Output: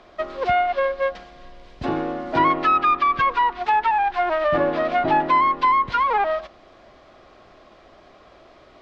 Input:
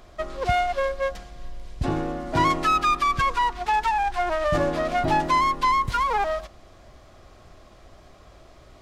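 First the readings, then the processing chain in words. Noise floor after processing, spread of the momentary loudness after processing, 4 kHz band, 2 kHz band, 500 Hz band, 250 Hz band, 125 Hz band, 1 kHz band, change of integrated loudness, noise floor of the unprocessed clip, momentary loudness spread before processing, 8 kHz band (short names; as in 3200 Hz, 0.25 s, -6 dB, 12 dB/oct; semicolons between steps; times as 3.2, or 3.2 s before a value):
-51 dBFS, 9 LU, -2.0 dB, +2.5 dB, +3.5 dB, +2.0 dB, -6.0 dB, +3.5 dB, +3.0 dB, -51 dBFS, 9 LU, under -15 dB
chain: three-band isolator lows -14 dB, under 200 Hz, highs -23 dB, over 5000 Hz; treble ducked by the level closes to 2500 Hz, closed at -18 dBFS; gain +3.5 dB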